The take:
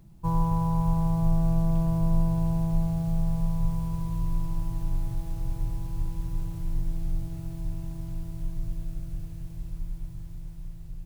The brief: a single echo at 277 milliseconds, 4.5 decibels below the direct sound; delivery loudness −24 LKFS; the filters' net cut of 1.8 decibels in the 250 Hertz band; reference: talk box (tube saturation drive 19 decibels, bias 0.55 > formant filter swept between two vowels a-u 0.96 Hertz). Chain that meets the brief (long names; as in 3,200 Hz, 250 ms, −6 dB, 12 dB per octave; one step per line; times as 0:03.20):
parametric band 250 Hz −4.5 dB
single-tap delay 277 ms −4.5 dB
tube saturation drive 19 dB, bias 0.55
formant filter swept between two vowels a-u 0.96 Hz
level +29.5 dB